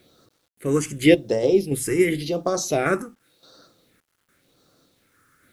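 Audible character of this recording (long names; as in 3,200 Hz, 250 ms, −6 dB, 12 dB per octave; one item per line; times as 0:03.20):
sample-and-hold tremolo, depth 80%
phaser sweep stages 4, 0.9 Hz, lowest notch 640–2,300 Hz
a quantiser's noise floor 12 bits, dither none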